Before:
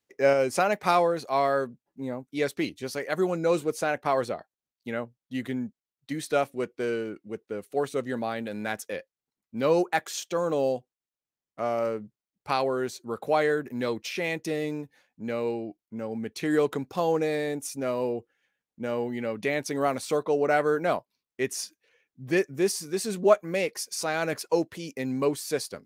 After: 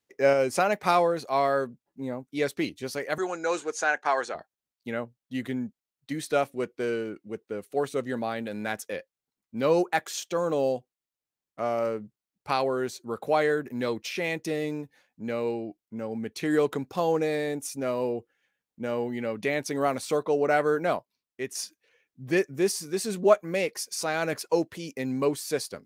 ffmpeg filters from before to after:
ffmpeg -i in.wav -filter_complex "[0:a]asettb=1/sr,asplit=3[link_01][link_02][link_03];[link_01]atrim=end=3.184[link_04];[link_02]atrim=start=3.18:end=4.35,asetpts=PTS-STARTPTS,afade=type=in:duration=0.004:curve=qsin,afade=type=out:start_time=1.166:duration=0.004:curve=qsin,highpass=430,equalizer=frequency=560:width_type=q:width=4:gain=-5,equalizer=frequency=830:width_type=q:width=4:gain=4,equalizer=frequency=1600:width_type=q:width=4:gain=9,equalizer=frequency=6600:width_type=q:width=4:gain=9,lowpass=frequency=8600:width=0.5412,lowpass=frequency=8600:width=1.3066[link_05];[link_03]atrim=start=4.346[link_06];[link_04][link_05]acrossfade=duration=0.004:curve1=hsin:curve2=qsin[link_07];[link_07][link_06]acrossfade=duration=0.004:curve1=qsin:curve2=hsin,asplit=2[link_08][link_09];[link_08]atrim=end=21.55,asetpts=PTS-STARTPTS,afade=type=out:start_time=20.81:duration=0.74:silence=0.473151[link_10];[link_09]atrim=start=21.55,asetpts=PTS-STARTPTS,afade=type=in:duration=0.004:curve=hsin:silence=0.473151[link_11];[link_10][link_11]concat=n=2:v=0:a=1" out.wav

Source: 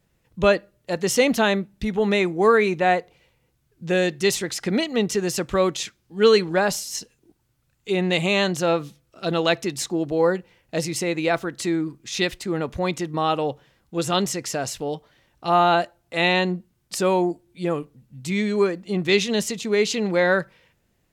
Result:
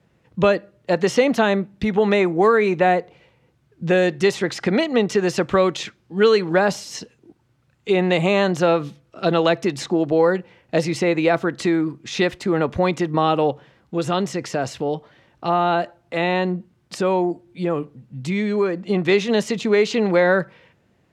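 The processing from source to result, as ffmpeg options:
ffmpeg -i in.wav -filter_complex "[0:a]asettb=1/sr,asplit=3[link_01][link_02][link_03];[link_01]atrim=end=13.504[link_04];[link_02]atrim=start=13.5:end=18.9,asetpts=PTS-STARTPTS,afade=type=in:duration=0.004:curve=qsin,afade=type=out:start_time=5.396:duration=0.004:curve=qsin,acompressor=threshold=-34dB:ratio=1.5:attack=3.2:release=140:knee=1:detection=peak[link_05];[link_03]atrim=start=18.896[link_06];[link_04][link_05]acrossfade=duration=0.004:curve1=hsin:curve2=qsin[link_07];[link_07][link_06]acrossfade=duration=0.004:curve1=qsin:curve2=hsin,highpass=94,aemphasis=mode=reproduction:type=75fm,acrossover=split=480|1800|5500[link_08][link_09][link_10][link_11];[link_08]acompressor=threshold=-28dB:ratio=4[link_12];[link_09]acompressor=threshold=-26dB:ratio=4[link_13];[link_10]acompressor=threshold=-37dB:ratio=4[link_14];[link_11]acompressor=threshold=-46dB:ratio=4[link_15];[link_12][link_13][link_14][link_15]amix=inputs=4:normalize=0,volume=8dB" out.wav

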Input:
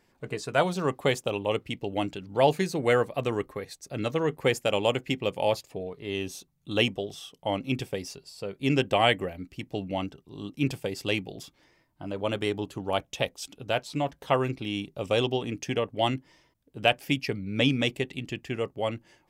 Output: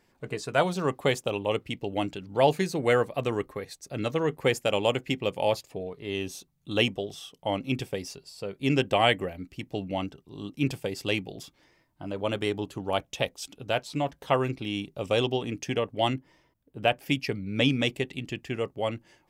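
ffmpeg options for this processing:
ffmpeg -i in.wav -filter_complex "[0:a]asettb=1/sr,asplit=3[link_01][link_02][link_03];[link_01]atrim=end=16.134[link_04];[link_02]atrim=start=16.13:end=17.06,asetpts=PTS-STARTPTS,afade=type=in:duration=0.004:curve=qsin,afade=type=out:start_time=0.926:duration=0.004:curve=qsin,equalizer=frequency=5900:width=0.46:gain=-7[link_05];[link_03]atrim=start=17.056[link_06];[link_04][link_05]acrossfade=duration=0.004:curve1=hsin:curve2=qsin[link_07];[link_07][link_06]acrossfade=duration=0.004:curve1=qsin:curve2=hsin" out.wav

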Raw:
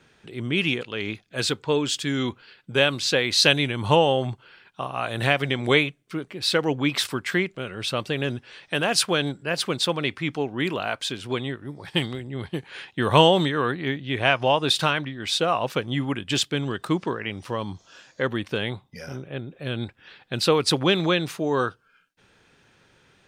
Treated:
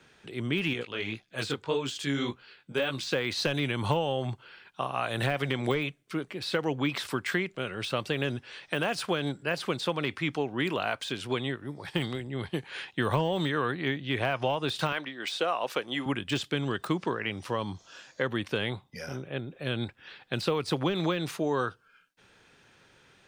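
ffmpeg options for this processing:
ffmpeg -i in.wav -filter_complex "[0:a]asettb=1/sr,asplit=3[link_01][link_02][link_03];[link_01]atrim=end=0.734[link_04];[link_02]atrim=start=0.73:end=3.07,asetpts=PTS-STARTPTS,afade=type=in:duration=0.004:curve=qsin,afade=type=out:start_time=2.336:duration=0.004:curve=qsin,flanger=delay=15:depth=6.6:speed=1.8[link_05];[link_03]atrim=start=3.066[link_06];[link_04][link_05]acrossfade=duration=0.004:curve1=hsin:curve2=qsin[link_07];[link_07][link_06]acrossfade=duration=0.004:curve1=qsin:curve2=hsin,asettb=1/sr,asplit=3[link_08][link_09][link_10];[link_08]atrim=end=14.924[link_11];[link_09]atrim=start=14.92:end=16.06,asetpts=PTS-STARTPTS,afade=type=in:duration=0.004:curve=qsin,afade=type=out:start_time=1.136:duration=0.004:curve=qsin,highpass=330[link_12];[link_10]atrim=start=16.056[link_13];[link_11][link_12]acrossfade=duration=0.004:curve1=hsin:curve2=qsin[link_14];[link_14][link_13]acrossfade=duration=0.004:curve1=qsin:curve2=hsin,deesser=0.8,lowshelf=frequency=350:gain=-3.5,acrossover=split=130[link_15][link_16];[link_16]acompressor=threshold=-24dB:ratio=10[link_17];[link_15][link_17]amix=inputs=2:normalize=0" out.wav

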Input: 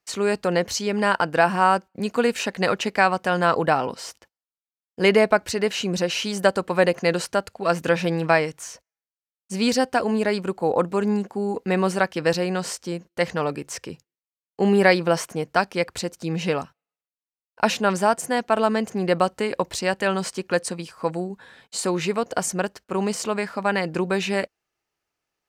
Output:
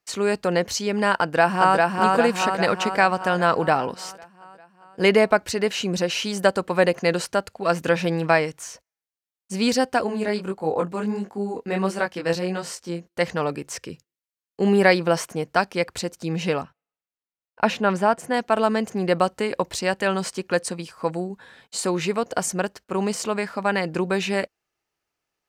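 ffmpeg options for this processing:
ffmpeg -i in.wav -filter_complex "[0:a]asplit=2[link_01][link_02];[link_02]afade=type=in:start_time=1.2:duration=0.01,afade=type=out:start_time=1.9:duration=0.01,aecho=0:1:400|800|1200|1600|2000|2400|2800|3200|3600:0.794328|0.476597|0.285958|0.171575|0.102945|0.061767|0.0370602|0.0222361|0.0133417[link_03];[link_01][link_03]amix=inputs=2:normalize=0,asplit=3[link_04][link_05][link_06];[link_04]afade=type=out:start_time=10.06:duration=0.02[link_07];[link_05]flanger=delay=19:depth=4.9:speed=1.5,afade=type=in:start_time=10.06:duration=0.02,afade=type=out:start_time=13.05:duration=0.02[link_08];[link_06]afade=type=in:start_time=13.05:duration=0.02[link_09];[link_07][link_08][link_09]amix=inputs=3:normalize=0,asettb=1/sr,asplit=3[link_10][link_11][link_12];[link_10]atrim=end=13.794[link_13];[link_11]atrim=start=13.79:end=14.67,asetpts=PTS-STARTPTS,afade=type=in:duration=0.004:curve=qsin,afade=type=out:start_time=0.876:duration=0.004:curve=qsin,equalizer=frequency=810:width_type=o:width=0.64:gain=-8.5[link_14];[link_12]atrim=start=14.666[link_15];[link_13][link_14]acrossfade=duration=0.004:curve1=hsin:curve2=qsin[link_16];[link_16][link_15]acrossfade=duration=0.004:curve1=qsin:curve2=hsin,asettb=1/sr,asplit=3[link_17][link_18][link_19];[link_17]atrim=end=16.614[link_20];[link_18]atrim=start=16.61:end=18.34,asetpts=PTS-STARTPTS,afade=type=in:duration=0.004:curve=qsin,afade=type=out:start_time=1.726:duration=0.004:curve=qsin,bass=frequency=250:gain=1,treble=frequency=4000:gain=-10[link_21];[link_19]atrim=start=18.336[link_22];[link_20][link_21]acrossfade=duration=0.004:curve1=hsin:curve2=qsin[link_23];[link_23][link_22]acrossfade=duration=0.004:curve1=qsin:curve2=hsin" out.wav

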